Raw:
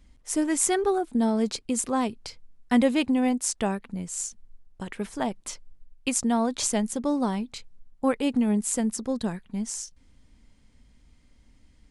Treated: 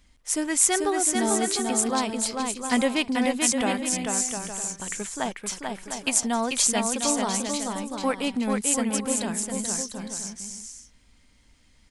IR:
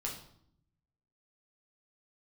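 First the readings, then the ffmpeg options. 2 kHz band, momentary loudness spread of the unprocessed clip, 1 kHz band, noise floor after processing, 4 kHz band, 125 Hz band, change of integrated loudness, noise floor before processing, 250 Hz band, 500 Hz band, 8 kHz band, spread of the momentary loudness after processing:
+6.0 dB, 14 LU, +3.0 dB, −59 dBFS, +7.0 dB, −2.0 dB, +1.5 dB, −59 dBFS, −2.0 dB, +0.5 dB, +7.0 dB, 10 LU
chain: -af "tiltshelf=frequency=720:gain=-5,aecho=1:1:440|704|862.4|957.4|1014:0.631|0.398|0.251|0.158|0.1"

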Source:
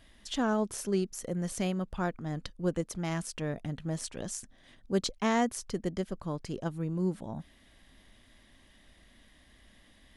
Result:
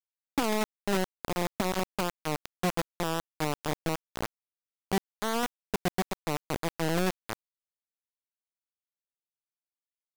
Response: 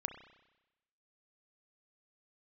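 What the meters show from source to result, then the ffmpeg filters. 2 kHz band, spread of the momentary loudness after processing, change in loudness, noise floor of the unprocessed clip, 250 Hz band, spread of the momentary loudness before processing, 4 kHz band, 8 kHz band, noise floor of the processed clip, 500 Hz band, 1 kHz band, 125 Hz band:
+5.0 dB, 6 LU, +1.5 dB, −61 dBFS, −1.0 dB, 9 LU, +4.0 dB, 0.0 dB, below −85 dBFS, +1.0 dB, +4.5 dB, −1.5 dB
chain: -af "lowpass=1500,alimiter=level_in=1dB:limit=-24dB:level=0:latency=1:release=277,volume=-1dB,acrusher=bits=4:mix=0:aa=0.000001,volume=4.5dB"

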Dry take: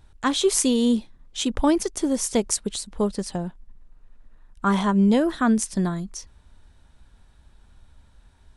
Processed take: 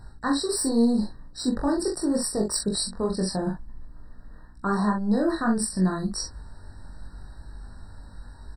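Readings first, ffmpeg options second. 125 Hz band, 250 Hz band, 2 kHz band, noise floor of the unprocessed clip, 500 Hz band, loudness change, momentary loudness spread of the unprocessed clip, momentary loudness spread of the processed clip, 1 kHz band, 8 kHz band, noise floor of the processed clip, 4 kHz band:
−1.5 dB, −2.5 dB, −3.0 dB, −55 dBFS, −3.0 dB, −3.0 dB, 12 LU, 22 LU, −3.0 dB, −3.0 dB, −46 dBFS, −2.5 dB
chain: -filter_complex "[0:a]acontrast=53,apsyclip=11dB,areverse,acompressor=threshold=-15dB:ratio=8,areverse,asplit=2[link_01][link_02];[link_02]adelay=43,volume=-5dB[link_03];[link_01][link_03]amix=inputs=2:normalize=0,flanger=delay=19:depth=3.3:speed=0.8,aeval=exprs='val(0)+0.00355*(sin(2*PI*60*n/s)+sin(2*PI*2*60*n/s)/2+sin(2*PI*3*60*n/s)/3+sin(2*PI*4*60*n/s)/4+sin(2*PI*5*60*n/s)/5)':channel_layout=same,afftfilt=real='re*eq(mod(floor(b*sr/1024/1900),2),0)':imag='im*eq(mod(floor(b*sr/1024/1900),2),0)':win_size=1024:overlap=0.75,volume=-4.5dB"

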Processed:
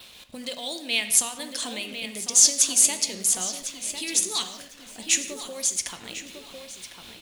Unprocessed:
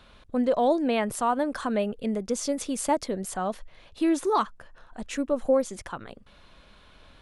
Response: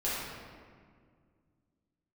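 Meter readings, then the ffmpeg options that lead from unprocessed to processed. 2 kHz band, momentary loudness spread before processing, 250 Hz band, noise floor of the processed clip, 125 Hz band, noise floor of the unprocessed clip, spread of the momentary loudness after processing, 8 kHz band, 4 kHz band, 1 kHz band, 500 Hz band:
+5.5 dB, 13 LU, −11.5 dB, −47 dBFS, can't be measured, −55 dBFS, 23 LU, +18.5 dB, +14.5 dB, −12.5 dB, −13.5 dB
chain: -filter_complex "[0:a]acrossover=split=2000[link_01][link_02];[link_01]acompressor=threshold=-36dB:ratio=5[link_03];[link_03][link_02]amix=inputs=2:normalize=0,lowshelf=frequency=310:gain=6,asplit=2[link_04][link_05];[link_05]adelay=1052,lowpass=frequency=3000:poles=1,volume=-7dB,asplit=2[link_06][link_07];[link_07]adelay=1052,lowpass=frequency=3000:poles=1,volume=0.46,asplit=2[link_08][link_09];[link_09]adelay=1052,lowpass=frequency=3000:poles=1,volume=0.46,asplit=2[link_10][link_11];[link_11]adelay=1052,lowpass=frequency=3000:poles=1,volume=0.46,asplit=2[link_12][link_13];[link_13]adelay=1052,lowpass=frequency=3000:poles=1,volume=0.46[link_14];[link_04][link_06][link_08][link_10][link_12][link_14]amix=inputs=6:normalize=0,aexciter=amount=7.6:drive=3.7:freq=2100,bandreject=frequency=50:width_type=h:width=6,bandreject=frequency=100:width_type=h:width=6,bandreject=frequency=150:width_type=h:width=6,bandreject=frequency=200:width_type=h:width=6,acrusher=bits=6:mix=0:aa=0.5,adynamicequalizer=threshold=0.0141:dfrequency=6700:dqfactor=6.5:tfrequency=6700:tqfactor=6.5:attack=5:release=100:ratio=0.375:range=3.5:mode=boostabove:tftype=bell,tremolo=f=4.1:d=0.32,aeval=exprs='1.06*(cos(1*acos(clip(val(0)/1.06,-1,1)))-cos(1*PI/2))+0.0119*(cos(8*acos(clip(val(0)/1.06,-1,1)))-cos(8*PI/2))':channel_layout=same,highpass=frequency=130:poles=1,asplit=2[link_15][link_16];[1:a]atrim=start_sample=2205,afade=type=out:start_time=0.24:duration=0.01,atrim=end_sample=11025[link_17];[link_16][link_17]afir=irnorm=-1:irlink=0,volume=-13dB[link_18];[link_15][link_18]amix=inputs=2:normalize=0,volume=-3.5dB"

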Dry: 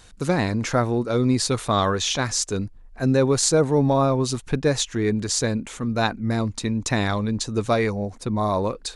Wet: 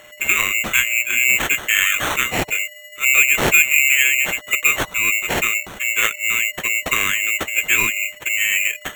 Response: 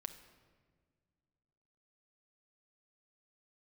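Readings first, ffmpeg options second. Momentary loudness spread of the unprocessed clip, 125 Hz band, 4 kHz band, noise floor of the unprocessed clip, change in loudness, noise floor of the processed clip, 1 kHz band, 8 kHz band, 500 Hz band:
7 LU, −13.0 dB, +6.5 dB, −47 dBFS, +6.5 dB, −41 dBFS, −1.5 dB, +7.0 dB, −9.0 dB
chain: -af "afftfilt=real='real(if(lt(b,920),b+92*(1-2*mod(floor(b/92),2)),b),0)':imag='imag(if(lt(b,920),b+92*(1-2*mod(floor(b/92),2)),b),0)':win_size=2048:overlap=0.75,aeval=exprs='val(0)+0.00316*sin(2*PI*4300*n/s)':channel_layout=same,acrusher=samples=9:mix=1:aa=0.000001,volume=3.5dB"

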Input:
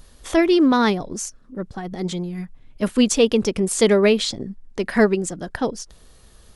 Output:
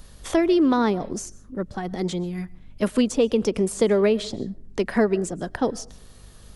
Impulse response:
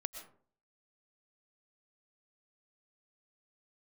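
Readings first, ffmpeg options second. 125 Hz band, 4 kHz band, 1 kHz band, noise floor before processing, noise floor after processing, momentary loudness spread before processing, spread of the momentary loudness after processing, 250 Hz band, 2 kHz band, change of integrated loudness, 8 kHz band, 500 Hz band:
−2.0 dB, −8.0 dB, −3.0 dB, −50 dBFS, −48 dBFS, 17 LU, 14 LU, −3.0 dB, −6.5 dB, −3.5 dB, −7.5 dB, −2.5 dB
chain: -filter_complex "[0:a]asplit=2[link_01][link_02];[1:a]atrim=start_sample=2205[link_03];[link_02][link_03]afir=irnorm=-1:irlink=0,volume=-13dB[link_04];[link_01][link_04]amix=inputs=2:normalize=0,acrossover=split=190|1100[link_05][link_06][link_07];[link_05]acompressor=threshold=-36dB:ratio=4[link_08];[link_06]acompressor=threshold=-17dB:ratio=4[link_09];[link_07]acompressor=threshold=-34dB:ratio=4[link_10];[link_08][link_09][link_10]amix=inputs=3:normalize=0,aeval=exprs='val(0)+0.00316*(sin(2*PI*50*n/s)+sin(2*PI*2*50*n/s)/2+sin(2*PI*3*50*n/s)/3+sin(2*PI*4*50*n/s)/4+sin(2*PI*5*50*n/s)/5)':channel_layout=same"

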